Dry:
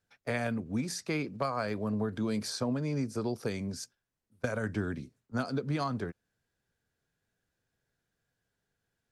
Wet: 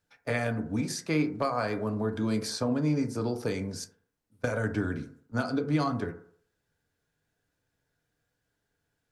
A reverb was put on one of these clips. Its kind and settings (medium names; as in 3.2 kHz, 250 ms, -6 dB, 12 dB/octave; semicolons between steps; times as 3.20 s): FDN reverb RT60 0.58 s, low-frequency decay 0.8×, high-frequency decay 0.3×, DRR 5.5 dB; trim +2 dB